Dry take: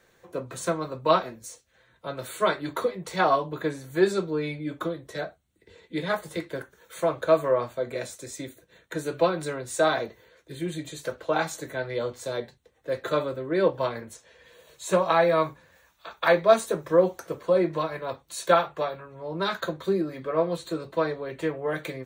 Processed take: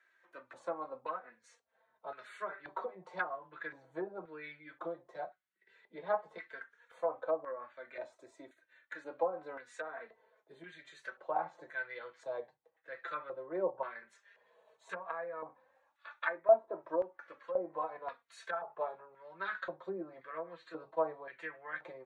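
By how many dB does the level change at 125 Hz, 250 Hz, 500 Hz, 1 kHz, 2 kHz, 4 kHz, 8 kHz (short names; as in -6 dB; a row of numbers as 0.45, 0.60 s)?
-26.5 dB, -19.5 dB, -13.0 dB, -11.5 dB, -10.0 dB, -22.5 dB, under -25 dB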